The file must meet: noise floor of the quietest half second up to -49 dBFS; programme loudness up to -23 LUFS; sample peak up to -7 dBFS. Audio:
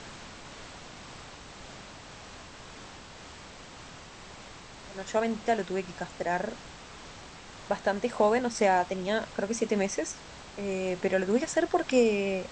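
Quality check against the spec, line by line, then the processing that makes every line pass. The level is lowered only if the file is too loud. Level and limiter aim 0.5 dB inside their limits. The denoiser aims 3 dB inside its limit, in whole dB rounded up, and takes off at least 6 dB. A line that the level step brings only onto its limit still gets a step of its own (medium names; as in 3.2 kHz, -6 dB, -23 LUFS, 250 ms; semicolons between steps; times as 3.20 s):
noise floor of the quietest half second -47 dBFS: fail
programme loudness -29.0 LUFS: pass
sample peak -10.5 dBFS: pass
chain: noise reduction 6 dB, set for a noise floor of -47 dBFS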